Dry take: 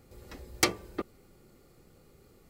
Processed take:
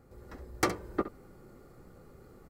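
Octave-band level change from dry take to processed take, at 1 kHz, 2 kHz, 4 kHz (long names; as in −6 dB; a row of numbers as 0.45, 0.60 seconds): +2.0, −4.0, −9.5 decibels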